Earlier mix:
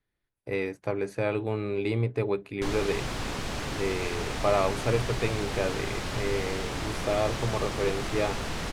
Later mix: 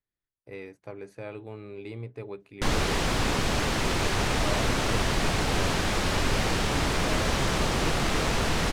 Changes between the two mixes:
speech −11.0 dB
background +7.0 dB

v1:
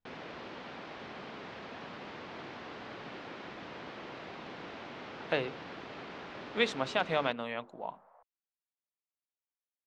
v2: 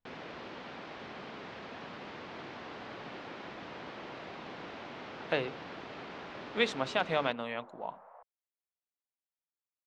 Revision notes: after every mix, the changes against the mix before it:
second sound +7.0 dB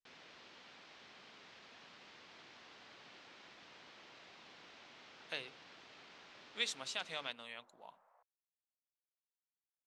speech: add high-shelf EQ 4,100 Hz +8.5 dB
master: add first-order pre-emphasis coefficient 0.9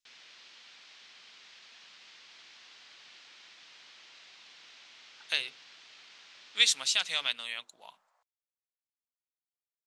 speech +7.5 dB
master: add tilt shelving filter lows −10 dB, about 1,400 Hz

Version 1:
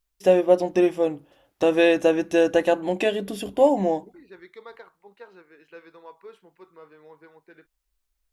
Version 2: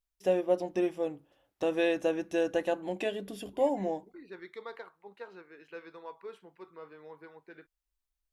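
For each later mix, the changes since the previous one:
first voice −10.0 dB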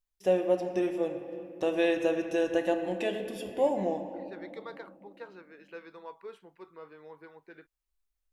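reverb: on, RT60 2.7 s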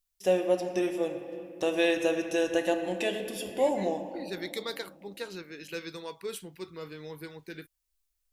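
second voice: remove resonant band-pass 950 Hz, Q 1.1
master: add high-shelf EQ 3,000 Hz +10.5 dB

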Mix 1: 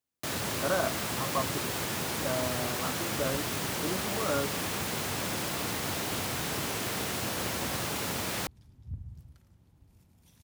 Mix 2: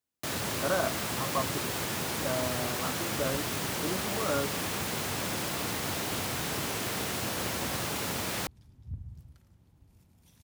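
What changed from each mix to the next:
nothing changed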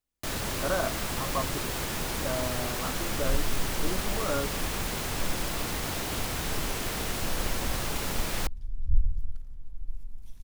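master: remove high-pass filter 88 Hz 24 dB per octave

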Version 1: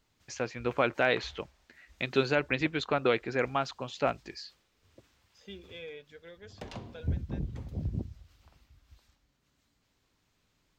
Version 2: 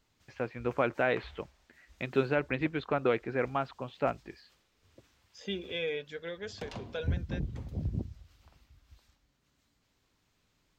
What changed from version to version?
first voice: add high-frequency loss of the air 400 metres
second voice +10.0 dB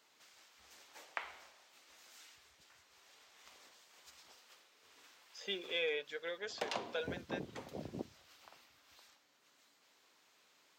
first voice: muted
background +7.0 dB
master: add high-pass filter 490 Hz 12 dB per octave

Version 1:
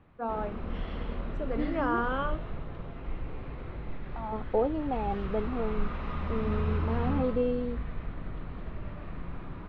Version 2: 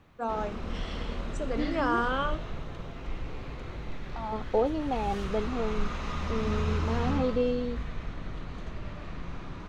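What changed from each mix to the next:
master: remove high-frequency loss of the air 390 metres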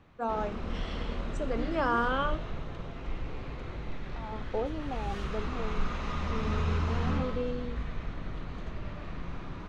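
second voice −7.0 dB
master: add high-shelf EQ 7,400 Hz −9 dB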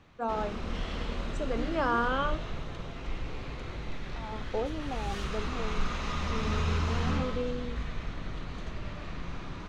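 background: add high-shelf EQ 3,100 Hz +9.5 dB

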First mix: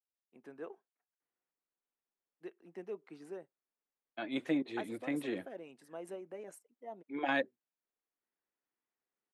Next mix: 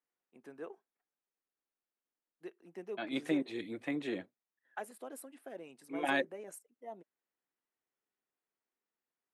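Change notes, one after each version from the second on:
second voice: entry −1.20 s
master: add high-shelf EQ 6,200 Hz +8.5 dB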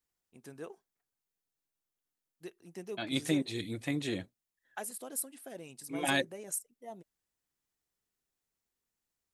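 master: remove three-way crossover with the lows and the highs turned down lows −23 dB, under 210 Hz, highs −16 dB, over 2,700 Hz

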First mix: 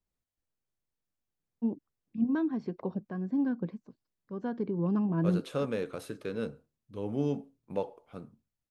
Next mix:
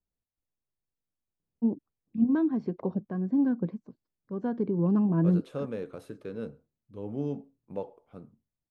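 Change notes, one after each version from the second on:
second voice −6.0 dB
master: add tilt shelving filter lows +4.5 dB, about 1,300 Hz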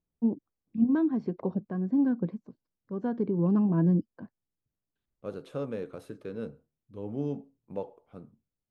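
first voice: entry −1.40 s

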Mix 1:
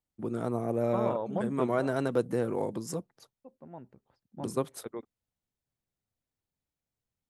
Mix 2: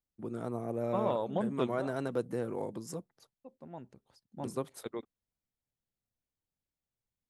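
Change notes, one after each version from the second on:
first voice −5.5 dB
second voice: remove low-pass filter 2,100 Hz 12 dB per octave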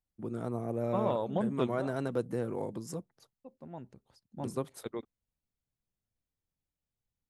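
master: add low-shelf EQ 150 Hz +6 dB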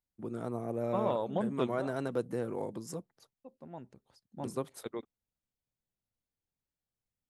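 master: add low-shelf EQ 150 Hz −6 dB

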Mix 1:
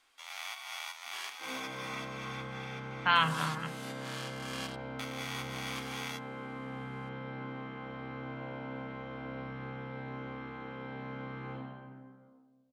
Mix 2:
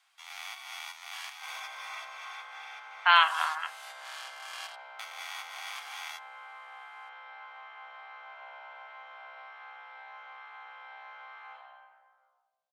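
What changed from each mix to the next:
speech +6.0 dB
master: add elliptic high-pass filter 710 Hz, stop band 60 dB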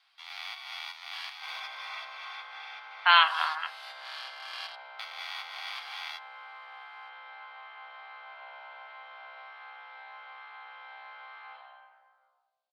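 master: add high shelf with overshoot 5,600 Hz −7.5 dB, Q 3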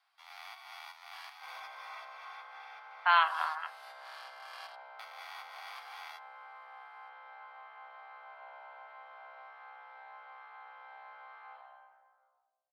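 master: add parametric band 3,400 Hz −13 dB 1.9 octaves

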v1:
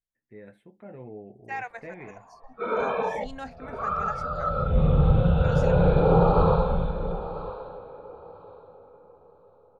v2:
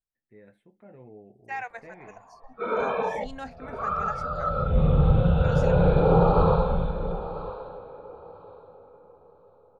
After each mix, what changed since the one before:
first voice −6.0 dB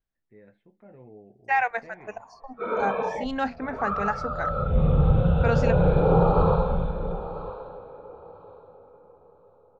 second voice +12.0 dB
master: add high-frequency loss of the air 140 metres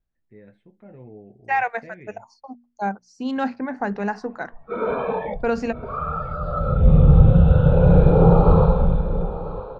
first voice: add high-shelf EQ 2,900 Hz +10.5 dB
background: entry +2.10 s
master: add low-shelf EQ 400 Hz +8.5 dB

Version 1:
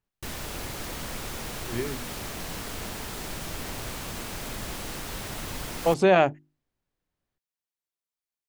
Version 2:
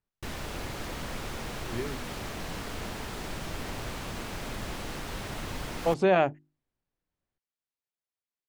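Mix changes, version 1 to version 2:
speech −3.5 dB
master: add low-pass filter 3,800 Hz 6 dB per octave

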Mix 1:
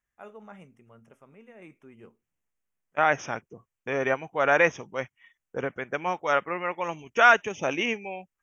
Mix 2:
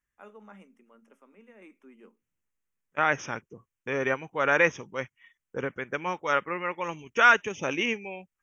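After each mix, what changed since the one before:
first voice: add Chebyshev high-pass with heavy ripple 190 Hz, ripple 3 dB
master: add parametric band 700 Hz −8.5 dB 0.45 octaves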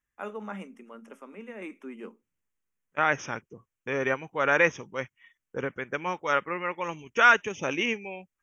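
first voice +12.0 dB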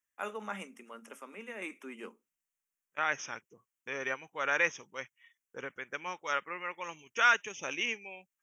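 second voice −8.0 dB
master: add spectral tilt +3 dB per octave

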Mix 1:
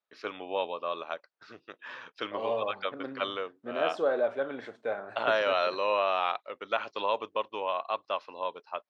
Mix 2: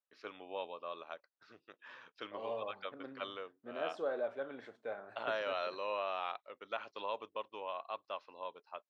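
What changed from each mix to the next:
first voice −10.5 dB
second voice −9.5 dB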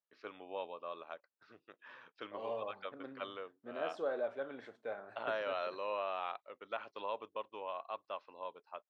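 first voice: add low-pass filter 2,800 Hz 6 dB per octave

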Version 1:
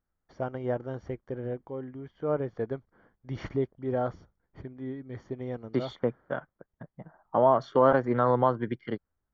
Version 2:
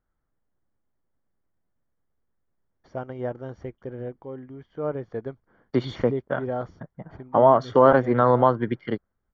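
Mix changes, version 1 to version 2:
first voice: entry +2.55 s
second voice +5.5 dB

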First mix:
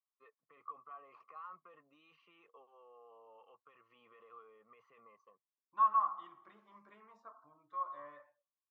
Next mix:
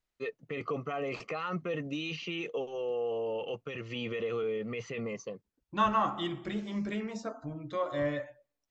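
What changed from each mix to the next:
first voice +3.5 dB
master: remove resonant band-pass 1,100 Hz, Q 9.7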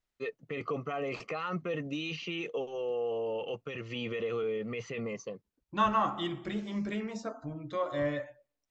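nothing changed

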